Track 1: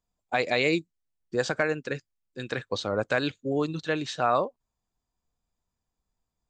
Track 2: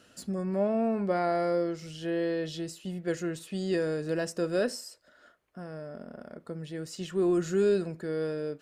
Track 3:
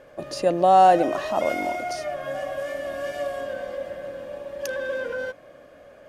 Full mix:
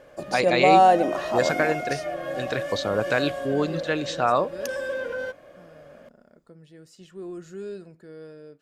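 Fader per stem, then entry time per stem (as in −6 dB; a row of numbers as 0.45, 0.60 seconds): +2.5, −11.0, −1.0 decibels; 0.00, 0.00, 0.00 seconds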